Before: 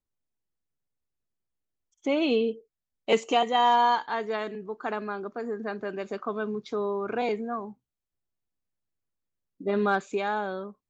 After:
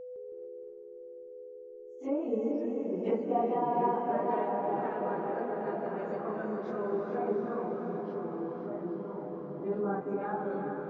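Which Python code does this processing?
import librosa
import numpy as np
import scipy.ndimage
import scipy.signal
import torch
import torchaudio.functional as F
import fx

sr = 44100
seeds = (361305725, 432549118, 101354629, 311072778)

p1 = fx.phase_scramble(x, sr, seeds[0], window_ms=100)
p2 = fx.env_lowpass_down(p1, sr, base_hz=1000.0, full_db=-23.5)
p3 = fx.peak_eq(p2, sr, hz=3800.0, db=-12.0, octaves=1.6)
p4 = p3 + 10.0 ** (-35.0 / 20.0) * np.sin(2.0 * np.pi * 500.0 * np.arange(len(p3)) / sr)
p5 = p4 + fx.echo_diffused(p4, sr, ms=756, feedback_pct=47, wet_db=-6, dry=0)
p6 = fx.rev_gated(p5, sr, seeds[1], gate_ms=480, shape='rising', drr_db=3.5)
p7 = fx.echo_pitch(p6, sr, ms=160, semitones=-3, count=2, db_per_echo=-6.0)
y = p7 * 10.0 ** (-6.5 / 20.0)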